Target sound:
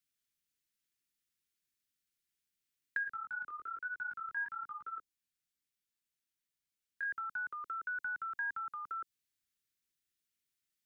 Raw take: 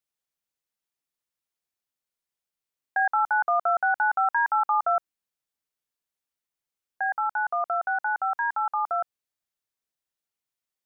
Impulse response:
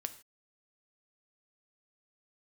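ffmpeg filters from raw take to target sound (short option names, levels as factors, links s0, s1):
-filter_complex "[0:a]acrossover=split=340|3000[s0][s1][s2];[s1]acompressor=threshold=0.0251:ratio=6[s3];[s0][s3][s2]amix=inputs=3:normalize=0,asettb=1/sr,asplit=3[s4][s5][s6];[s4]atrim=end=3.034[s7];[s5]atrim=start=3.03:end=7.05,asetpts=PTS-STARTPTS,afade=t=in:d=0.004:c=qsin,afade=t=out:st=4.016:d=0.004:c=qsin,flanger=delay=15:depth=7.7:speed=1.1[s8];[s6]atrim=start=7.046[s9];[s7][s8]acrossfade=d=0.004:c1=hsin:c2=qsin[s10];[s10][s9]acrossfade=d=0.004:c1=qsin:c2=hsin,asuperstop=centerf=730:order=4:qfactor=0.64,volume=1.19"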